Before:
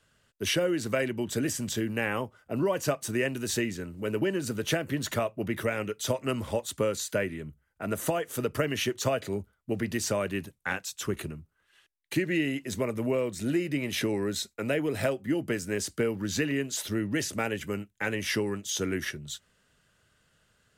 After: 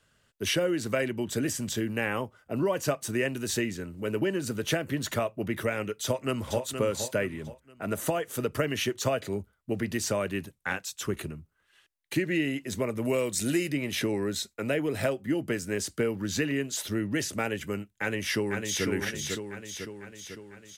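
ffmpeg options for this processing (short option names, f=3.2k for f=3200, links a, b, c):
-filter_complex "[0:a]asplit=2[a][b];[b]afade=t=in:st=6.03:d=0.01,afade=t=out:st=6.65:d=0.01,aecho=0:1:470|940|1410|1880:0.421697|0.147594|0.0516578|0.0180802[c];[a][c]amix=inputs=2:normalize=0,asettb=1/sr,asplit=3[d][e][f];[d]atrim=end=13.054[g];[e]atrim=start=13.05:end=13.72,asetpts=PTS-STARTPTS,afade=t=in:d=0.004:c=qsin,afade=t=out:st=0.666:d=0.004:c=qsin,equalizer=f=9.5k:t=o:w=2.7:g=12.5[h];[f]atrim=start=13.716[i];[g][h]acrossfade=d=0.004:c1=hsin:c2=qsin[j];[j][i]acrossfade=d=0.004:c1=qsin:c2=hsin,asplit=2[k][l];[l]afade=t=in:st=17.88:d=0.01,afade=t=out:st=18.85:d=0.01,aecho=0:1:500|1000|1500|2000|2500|3000|3500|4000|4500:0.595662|0.357397|0.214438|0.128663|0.0771978|0.0463187|0.0277912|0.0166747|0.0100048[m];[k][m]amix=inputs=2:normalize=0"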